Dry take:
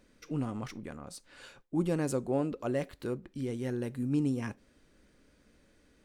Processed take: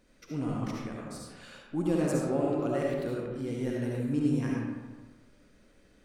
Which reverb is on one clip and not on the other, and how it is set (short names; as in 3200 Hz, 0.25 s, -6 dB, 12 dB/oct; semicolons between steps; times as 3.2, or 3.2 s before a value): digital reverb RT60 1.3 s, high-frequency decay 0.55×, pre-delay 30 ms, DRR -3.5 dB; gain -2 dB